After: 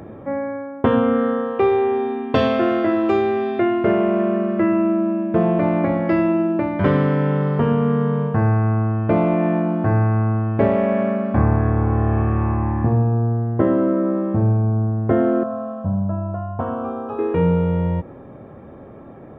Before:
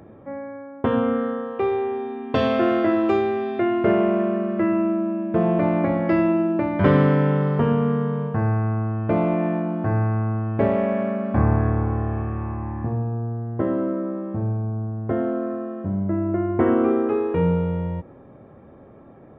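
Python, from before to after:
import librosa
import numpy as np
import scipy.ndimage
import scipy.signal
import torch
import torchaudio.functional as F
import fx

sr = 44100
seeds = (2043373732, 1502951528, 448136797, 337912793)

y = fx.rider(x, sr, range_db=5, speed_s=0.5)
y = fx.fixed_phaser(y, sr, hz=850.0, stages=4, at=(15.43, 17.19))
y = F.gain(torch.from_numpy(y), 3.5).numpy()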